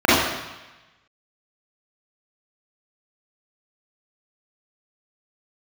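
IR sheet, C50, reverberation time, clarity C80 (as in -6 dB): -3.5 dB, 1.1 s, 1.5 dB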